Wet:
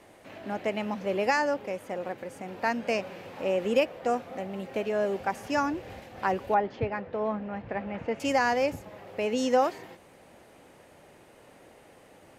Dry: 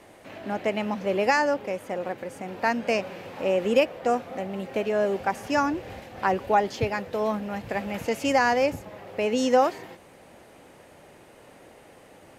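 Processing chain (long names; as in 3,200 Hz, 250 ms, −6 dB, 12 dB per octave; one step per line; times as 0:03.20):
0:06.54–0:08.20: low-pass filter 2,100 Hz 12 dB per octave
level −3.5 dB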